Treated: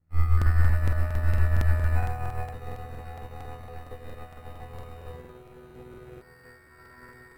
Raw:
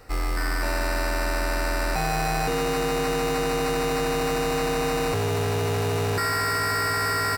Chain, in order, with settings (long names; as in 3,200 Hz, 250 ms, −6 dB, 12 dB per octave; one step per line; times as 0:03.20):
mains hum 60 Hz, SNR 13 dB
on a send: tape delay 190 ms, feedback 60%, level −4.5 dB, low-pass 2,400 Hz
on the sum: dead-zone distortion −45 dBFS
low-shelf EQ 160 Hz +7.5 dB
ring modulation 39 Hz
in parallel at −5 dB: soft clipping −22 dBFS, distortion −12 dB
on the sum: parametric band 5,600 Hz −12.5 dB 1.2 octaves
resonators tuned to a chord E2 fifth, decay 0.62 s
regular buffer underruns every 0.23 s, samples 2,048, repeat, from 0:00.37
expander for the loud parts 2.5 to 1, over −41 dBFS
level +9 dB